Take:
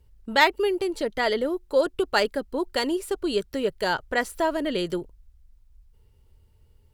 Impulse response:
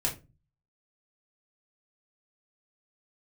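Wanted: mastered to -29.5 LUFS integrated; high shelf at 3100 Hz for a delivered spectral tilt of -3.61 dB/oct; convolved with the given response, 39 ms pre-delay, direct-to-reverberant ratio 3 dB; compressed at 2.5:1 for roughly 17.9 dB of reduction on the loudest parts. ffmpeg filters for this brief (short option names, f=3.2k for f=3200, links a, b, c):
-filter_complex "[0:a]highshelf=f=3.1k:g=-7,acompressor=threshold=-44dB:ratio=2.5,asplit=2[a][b];[1:a]atrim=start_sample=2205,adelay=39[c];[b][c]afir=irnorm=-1:irlink=0,volume=-9dB[d];[a][d]amix=inputs=2:normalize=0,volume=9dB"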